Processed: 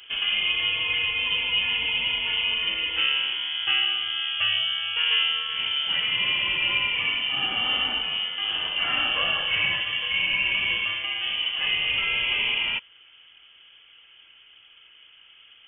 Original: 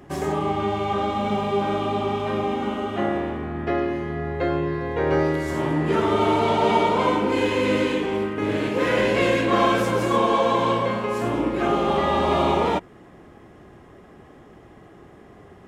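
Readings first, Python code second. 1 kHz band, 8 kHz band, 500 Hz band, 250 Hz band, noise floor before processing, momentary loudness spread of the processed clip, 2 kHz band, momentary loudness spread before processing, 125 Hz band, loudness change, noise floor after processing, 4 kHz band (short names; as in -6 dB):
-14.5 dB, under -35 dB, -23.5 dB, -24.0 dB, -48 dBFS, 3 LU, +6.0 dB, 6 LU, -18.5 dB, -0.5 dB, -54 dBFS, +14.0 dB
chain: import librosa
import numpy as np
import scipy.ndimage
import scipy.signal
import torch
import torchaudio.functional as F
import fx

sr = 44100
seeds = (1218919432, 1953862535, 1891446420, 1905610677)

y = fx.low_shelf(x, sr, hz=76.0, db=-5.5)
y = fx.rider(y, sr, range_db=10, speed_s=2.0)
y = fx.freq_invert(y, sr, carrier_hz=3300)
y = y * librosa.db_to_amplitude(-3.5)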